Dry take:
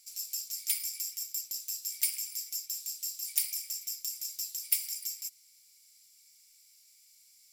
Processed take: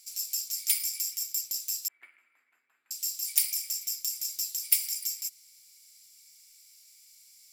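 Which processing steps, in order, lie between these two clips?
0:01.88–0:02.91: elliptic band-pass filter 250–1,700 Hz, stop band 50 dB
level +4.5 dB

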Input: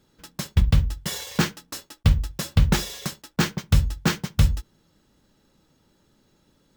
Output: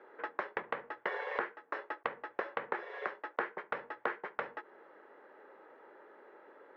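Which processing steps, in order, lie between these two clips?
elliptic band-pass filter 410–1,900 Hz, stop band 70 dB
downward compressor 16 to 1, threshold −47 dBFS, peak gain reduction 23.5 dB
level +14 dB

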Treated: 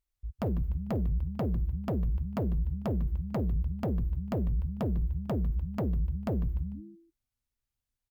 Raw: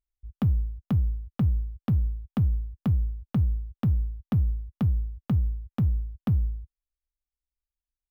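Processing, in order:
echo with shifted repeats 149 ms, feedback 32%, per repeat −130 Hz, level −11 dB
harmonic generator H 5 −6 dB, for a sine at −16 dBFS
level −7.5 dB

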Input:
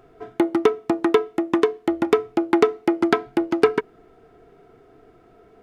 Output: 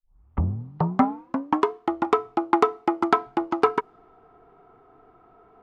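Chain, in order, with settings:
turntable start at the beginning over 1.71 s
flat-topped bell 1,000 Hz +11 dB 1 octave
low-pass that shuts in the quiet parts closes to 2,800 Hz, open at −12.5 dBFS
level −5.5 dB

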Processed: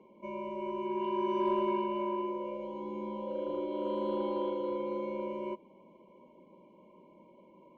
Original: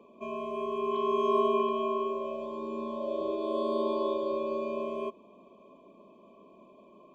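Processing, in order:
in parallel at −3 dB: soft clipping −25 dBFS, distortion −14 dB
on the sum: high-frequency loss of the air 84 metres
wrong playback speed 48 kHz file played as 44.1 kHz
Butterworth band-reject 1,800 Hz, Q 6
level −7 dB

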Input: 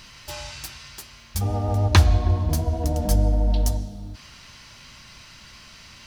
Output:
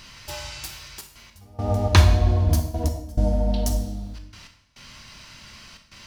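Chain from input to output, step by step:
gate pattern "xxxxxxx.x.." 104 BPM −24 dB
on a send: convolution reverb RT60 0.70 s, pre-delay 19 ms, DRR 5.5 dB

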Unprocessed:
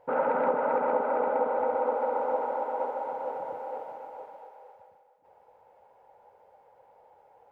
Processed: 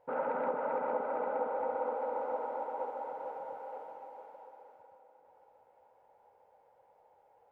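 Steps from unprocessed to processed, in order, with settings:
0:03.28–0:04.36: low-shelf EQ 130 Hz −10 dB
on a send: feedback delay with all-pass diffusion 499 ms, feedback 53%, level −13 dB
on the sum: level −7.5 dB

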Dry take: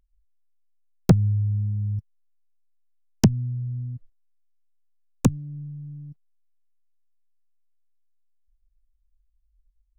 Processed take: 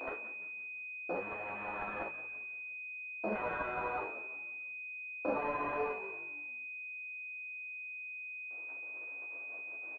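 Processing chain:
linear delta modulator 16 kbit/s, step −33 dBFS
noise gate with hold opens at −33 dBFS
convolution reverb, pre-delay 3 ms, DRR −4.5 dB
reversed playback
downward compressor 6 to 1, threshold −28 dBFS, peak gain reduction 19 dB
reversed playback
high-pass filter 450 Hz 24 dB per octave
brickwall limiter −36.5 dBFS, peak gain reduction 8 dB
on a send: echo with shifted repeats 173 ms, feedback 40%, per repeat −48 Hz, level −14 dB
on the sum: multi-voice chorus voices 6, 0.59 Hz, delay 14 ms, depth 4.6 ms
switching amplifier with a slow clock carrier 2,500 Hz
level +15 dB

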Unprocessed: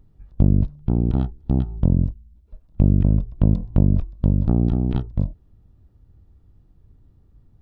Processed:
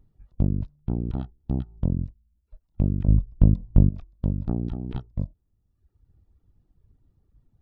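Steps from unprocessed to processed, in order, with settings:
0:03.08–0:03.89: spectral tilt −2 dB per octave
reverb reduction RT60 1.1 s
level −6 dB

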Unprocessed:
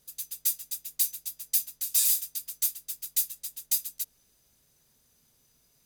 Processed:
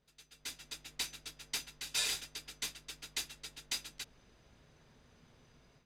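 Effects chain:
low-pass filter 2,500 Hz 12 dB per octave
automatic gain control gain up to 14 dB
level −4 dB

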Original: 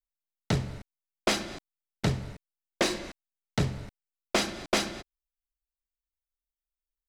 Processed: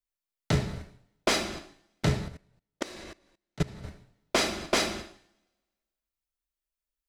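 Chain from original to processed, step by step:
coupled-rooms reverb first 0.57 s, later 1.5 s, from −27 dB, DRR 3 dB
0:02.28–0:03.84: output level in coarse steps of 22 dB

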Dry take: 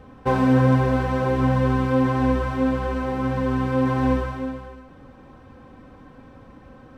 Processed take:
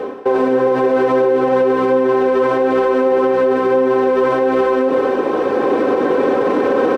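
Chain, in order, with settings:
camcorder AGC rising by 5.1 dB per second
high-shelf EQ 5,500 Hz −7 dB
reversed playback
downward compressor 10 to 1, threshold −31 dBFS, peak gain reduction 18 dB
reversed playback
high-pass with resonance 400 Hz, resonance Q 4.9
on a send: single-tap delay 404 ms −5 dB
on the sum: boost into a limiter +27 dB
level −6 dB

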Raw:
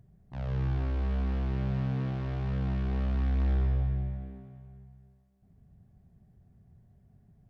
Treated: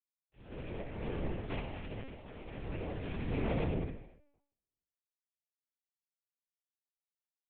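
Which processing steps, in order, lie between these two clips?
graphic EQ with 15 bands 100 Hz −9 dB, 400 Hz +10 dB, 1,000 Hz −7 dB, 2,500 Hz +10 dB
power curve on the samples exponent 3
0:02.87–0:03.29: gain into a clipping stage and back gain 32.5 dB
on a send: flutter between parallel walls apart 11.1 metres, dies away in 0.46 s
on the sum: linear-prediction vocoder at 8 kHz pitch kept
level +2 dB

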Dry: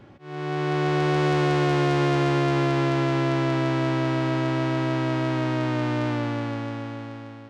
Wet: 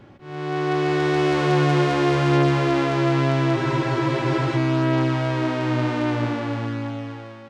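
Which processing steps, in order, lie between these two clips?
single-tap delay 192 ms −5.5 dB
frozen spectrum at 0:03.58, 0.98 s
level +1.5 dB

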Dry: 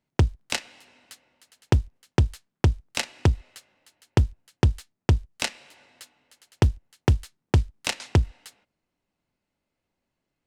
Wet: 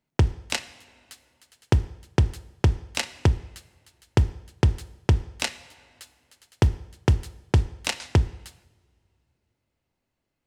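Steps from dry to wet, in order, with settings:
coupled-rooms reverb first 0.79 s, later 3.3 s, from −25 dB, DRR 14 dB

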